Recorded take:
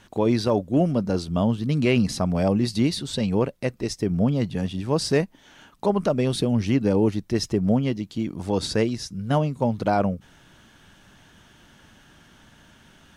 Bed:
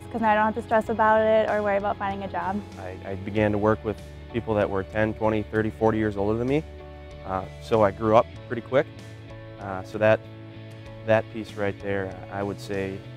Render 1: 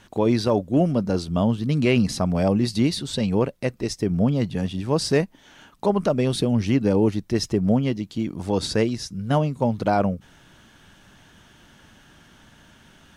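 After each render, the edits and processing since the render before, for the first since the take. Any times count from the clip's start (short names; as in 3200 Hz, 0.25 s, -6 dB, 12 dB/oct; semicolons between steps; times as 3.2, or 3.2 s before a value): gain +1 dB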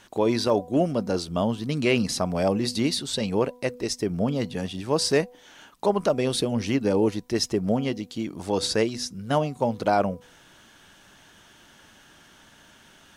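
tone controls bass -8 dB, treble +3 dB; de-hum 246.6 Hz, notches 4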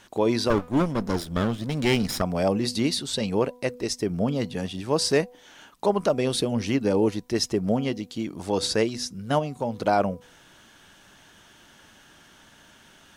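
0.5–2.22 minimum comb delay 0.56 ms; 9.39–9.8 compressor 1.5:1, threshold -29 dBFS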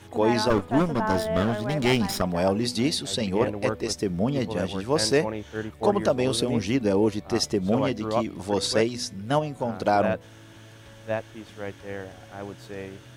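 add bed -8 dB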